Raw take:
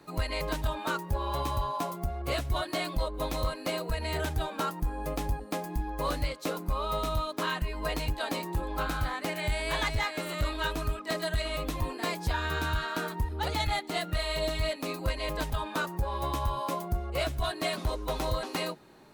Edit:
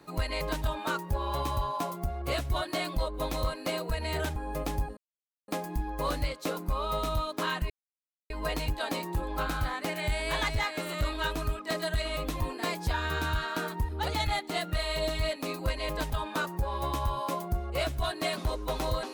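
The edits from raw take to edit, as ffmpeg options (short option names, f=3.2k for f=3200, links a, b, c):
-filter_complex "[0:a]asplit=4[a][b][c][d];[a]atrim=end=4.362[e];[b]atrim=start=4.868:end=5.48,asetpts=PTS-STARTPTS,afade=t=out:st=0.608:d=0.004:c=hsin,apad=pad_dur=0.51[f];[c]atrim=start=5.48:end=7.7,asetpts=PTS-STARTPTS,afade=t=in:d=0.004:c=hsin,afade=t=out:st=2.216:d=0.004:c=hsin,apad=pad_dur=0.6[g];[d]atrim=start=7.7,asetpts=PTS-STARTPTS,afade=t=in:d=0.004:c=hsin[h];[f][g][h]concat=n=3:v=0:a=1[i];[e][i]acrossfade=d=0.004:c1=hsin:c2=hsin"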